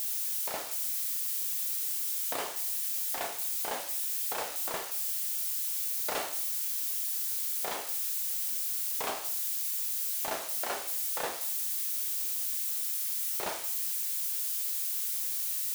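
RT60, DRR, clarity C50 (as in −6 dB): 0.55 s, 4.0 dB, 9.5 dB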